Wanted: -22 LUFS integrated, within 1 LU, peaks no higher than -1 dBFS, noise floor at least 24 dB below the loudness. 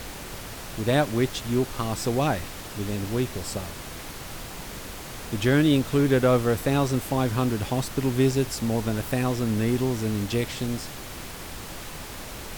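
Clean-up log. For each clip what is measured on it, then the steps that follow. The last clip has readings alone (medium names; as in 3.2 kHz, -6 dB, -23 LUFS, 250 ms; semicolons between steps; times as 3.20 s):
noise floor -38 dBFS; noise floor target -50 dBFS; loudness -25.5 LUFS; peak level -8.5 dBFS; loudness target -22.0 LUFS
-> noise print and reduce 12 dB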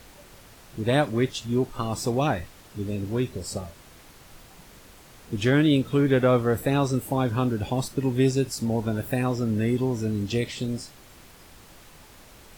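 noise floor -50 dBFS; loudness -25.5 LUFS; peak level -8.5 dBFS; loudness target -22.0 LUFS
-> trim +3.5 dB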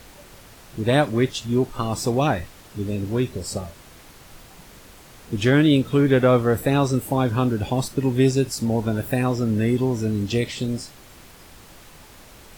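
loudness -22.0 LUFS; peak level -5.0 dBFS; noise floor -47 dBFS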